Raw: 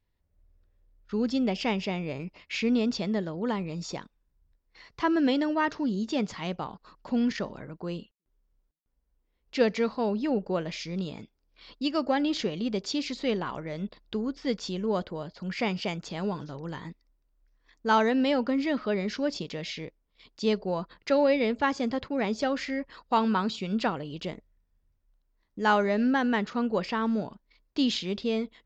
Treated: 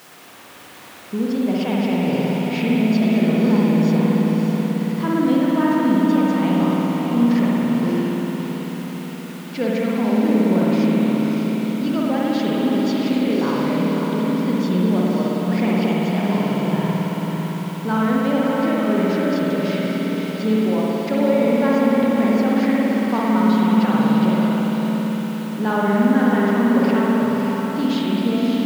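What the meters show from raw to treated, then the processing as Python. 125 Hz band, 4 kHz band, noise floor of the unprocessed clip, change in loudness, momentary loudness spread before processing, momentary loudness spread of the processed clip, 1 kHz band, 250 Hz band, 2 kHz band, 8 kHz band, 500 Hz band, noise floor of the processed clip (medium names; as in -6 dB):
+15.0 dB, +3.5 dB, -75 dBFS, +10.0 dB, 13 LU, 7 LU, +6.5 dB, +13.0 dB, +6.0 dB, no reading, +8.0 dB, -32 dBFS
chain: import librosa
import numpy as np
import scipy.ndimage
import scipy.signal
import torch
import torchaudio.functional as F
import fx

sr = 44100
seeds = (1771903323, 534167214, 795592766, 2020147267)

p1 = fx.over_compress(x, sr, threshold_db=-32.0, ratio=-1.0)
p2 = x + (p1 * librosa.db_to_amplitude(-1.0))
p3 = fx.peak_eq(p2, sr, hz=220.0, db=5.5, octaves=0.56)
p4 = fx.quant_dither(p3, sr, seeds[0], bits=6, dither='triangular')
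p5 = scipy.signal.sosfilt(scipy.signal.butter(4, 110.0, 'highpass', fs=sr, output='sos'), p4)
p6 = fx.high_shelf(p5, sr, hz=3100.0, db=-11.0)
p7 = fx.echo_diffused(p6, sr, ms=583, feedback_pct=48, wet_db=-4.5)
p8 = fx.rev_spring(p7, sr, rt60_s=3.5, pass_ms=(55,), chirp_ms=50, drr_db=-5.0)
y = p8 * librosa.db_to_amplitude(-2.5)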